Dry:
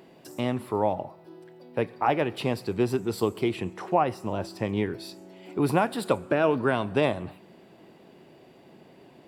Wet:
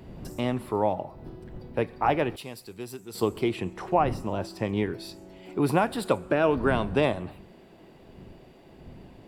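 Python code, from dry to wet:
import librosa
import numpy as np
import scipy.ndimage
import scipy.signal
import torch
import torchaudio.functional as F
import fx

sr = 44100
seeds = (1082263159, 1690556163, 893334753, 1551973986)

y = fx.dmg_wind(x, sr, seeds[0], corner_hz=200.0, level_db=-43.0)
y = fx.pre_emphasis(y, sr, coefficient=0.8, at=(2.36, 3.15))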